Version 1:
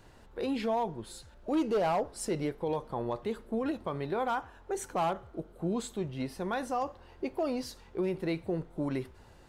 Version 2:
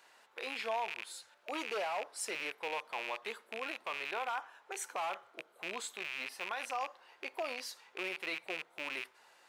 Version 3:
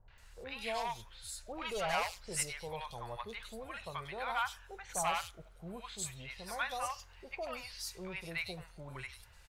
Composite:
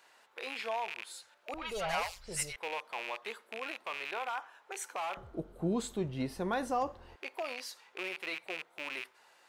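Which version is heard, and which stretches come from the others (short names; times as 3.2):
2
1.54–2.56 from 3
5.17–7.16 from 1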